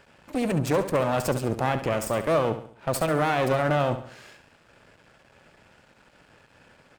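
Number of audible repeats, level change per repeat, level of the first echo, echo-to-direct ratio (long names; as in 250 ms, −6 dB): 4, −7.5 dB, −11.0 dB, −10.0 dB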